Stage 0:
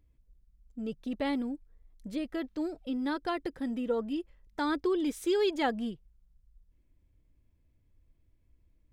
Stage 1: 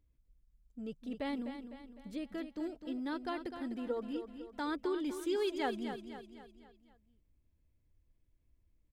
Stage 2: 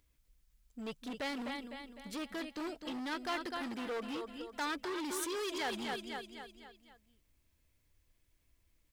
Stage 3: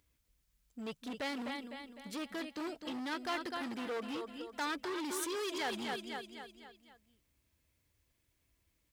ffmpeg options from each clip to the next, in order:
ffmpeg -i in.wav -af "aecho=1:1:253|506|759|1012|1265:0.355|0.17|0.0817|0.0392|0.0188,volume=-6.5dB" out.wav
ffmpeg -i in.wav -af "alimiter=level_in=8.5dB:limit=-24dB:level=0:latency=1:release=30,volume=-8.5dB,asoftclip=type=hard:threshold=-38.5dB,tiltshelf=frequency=660:gain=-7.5,volume=5.5dB" out.wav
ffmpeg -i in.wav -af "highpass=56" out.wav

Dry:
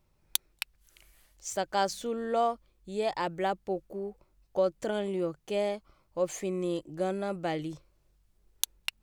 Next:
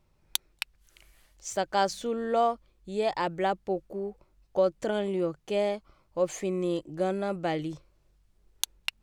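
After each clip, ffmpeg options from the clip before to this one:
ffmpeg -i in.wav -af "highshelf=frequency=9900:gain=-8.5,volume=2.5dB" out.wav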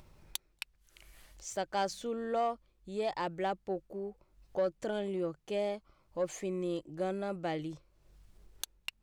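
ffmpeg -i in.wav -af "acompressor=mode=upward:threshold=-40dB:ratio=2.5,asoftclip=type=tanh:threshold=-16.5dB,volume=-5.5dB" out.wav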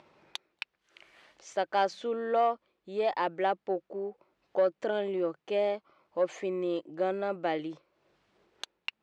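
ffmpeg -i in.wav -af "highpass=310,lowpass=3300,volume=6dB" out.wav

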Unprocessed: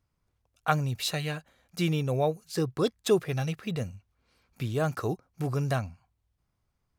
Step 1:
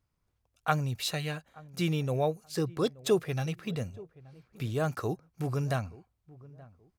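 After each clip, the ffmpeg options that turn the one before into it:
ffmpeg -i in.wav -filter_complex "[0:a]asplit=2[link_01][link_02];[link_02]adelay=877,lowpass=frequency=830:poles=1,volume=-20dB,asplit=2[link_03][link_04];[link_04]adelay=877,lowpass=frequency=830:poles=1,volume=0.3[link_05];[link_01][link_03][link_05]amix=inputs=3:normalize=0,volume=-2dB" out.wav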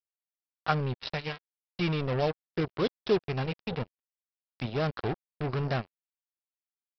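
ffmpeg -i in.wav -af "equalizer=frequency=4200:width_type=o:width=0.48:gain=-3.5,aresample=11025,acrusher=bits=4:mix=0:aa=0.5,aresample=44100" out.wav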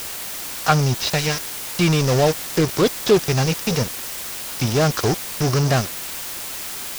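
ffmpeg -i in.wav -af "aeval=exprs='val(0)+0.5*0.0447*sgn(val(0))':channel_layout=same,volume=8.5dB" out.wav

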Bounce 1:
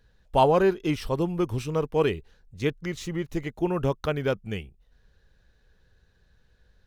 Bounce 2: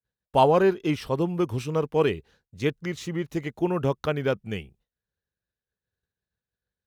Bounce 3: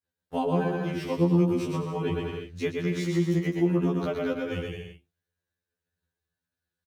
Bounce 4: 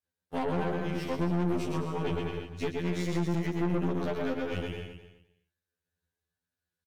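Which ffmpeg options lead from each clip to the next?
ffmpeg -i in.wav -af "highpass=88,agate=range=-33dB:threshold=-52dB:ratio=3:detection=peak,adynamicequalizer=threshold=0.00562:dfrequency=4200:dqfactor=0.7:tfrequency=4200:tqfactor=0.7:attack=5:release=100:ratio=0.375:range=2:mode=cutabove:tftype=highshelf,volume=1dB" out.wav
ffmpeg -i in.wav -filter_complex "[0:a]aecho=1:1:120|210|277.5|328.1|366.1:0.631|0.398|0.251|0.158|0.1,acrossover=split=310[link_01][link_02];[link_02]acompressor=threshold=-31dB:ratio=3[link_03];[link_01][link_03]amix=inputs=2:normalize=0,afftfilt=real='re*2*eq(mod(b,4),0)':imag='im*2*eq(mod(b,4),0)':win_size=2048:overlap=0.75,volume=2dB" out.wav
ffmpeg -i in.wav -af "aeval=exprs='(tanh(25.1*val(0)+0.7)-tanh(0.7))/25.1':channel_layout=same,aecho=1:1:257|514:0.211|0.0338,volume=1.5dB" -ar 48000 -c:a libvorbis -b:a 192k out.ogg

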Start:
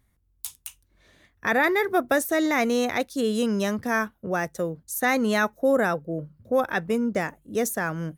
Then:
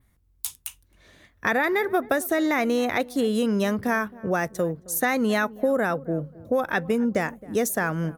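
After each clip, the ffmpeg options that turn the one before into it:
ffmpeg -i in.wav -filter_complex "[0:a]acompressor=threshold=-23dB:ratio=6,asplit=2[link_01][link_02];[link_02]adelay=267,lowpass=frequency=890:poles=1,volume=-19.5dB,asplit=2[link_03][link_04];[link_04]adelay=267,lowpass=frequency=890:poles=1,volume=0.37,asplit=2[link_05][link_06];[link_06]adelay=267,lowpass=frequency=890:poles=1,volume=0.37[link_07];[link_01][link_03][link_05][link_07]amix=inputs=4:normalize=0,adynamicequalizer=threshold=0.00224:dfrequency=6300:dqfactor=1.1:tfrequency=6300:tqfactor=1.1:attack=5:release=100:ratio=0.375:range=3:mode=cutabove:tftype=bell,volume=4dB" out.wav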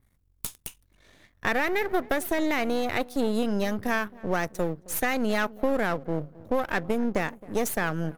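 ffmpeg -i in.wav -af "aeval=exprs='if(lt(val(0),0),0.251*val(0),val(0))':channel_layout=same" out.wav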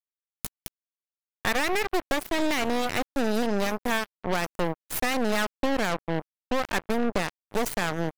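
ffmpeg -i in.wav -af "acrusher=bits=3:mix=0:aa=0.5" out.wav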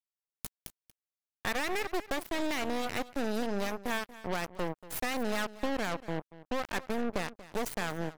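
ffmpeg -i in.wav -af "aecho=1:1:235:0.141,volume=-7dB" out.wav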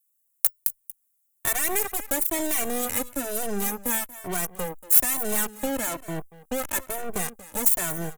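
ffmpeg -i in.wav -filter_complex "[0:a]aexciter=amount=11.5:drive=4.7:freq=7000,asoftclip=type=tanh:threshold=-7dB,asplit=2[link_01][link_02];[link_02]adelay=2.1,afreqshift=1.1[link_03];[link_01][link_03]amix=inputs=2:normalize=1,volume=5.5dB" out.wav

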